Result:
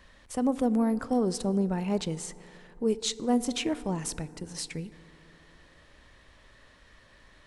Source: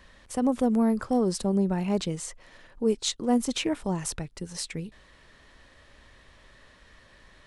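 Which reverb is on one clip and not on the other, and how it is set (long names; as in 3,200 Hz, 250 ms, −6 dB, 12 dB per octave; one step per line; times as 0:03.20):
feedback delay network reverb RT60 3.2 s, high-frequency decay 0.3×, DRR 16 dB
level −2 dB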